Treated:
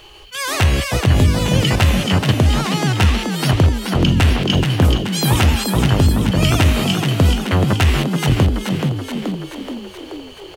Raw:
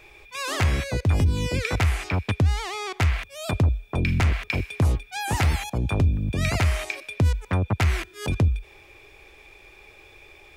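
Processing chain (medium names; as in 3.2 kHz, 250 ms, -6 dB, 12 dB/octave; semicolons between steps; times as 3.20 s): formant shift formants +4 st; frequency-shifting echo 428 ms, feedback 60%, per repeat +52 Hz, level -5.5 dB; trim +7 dB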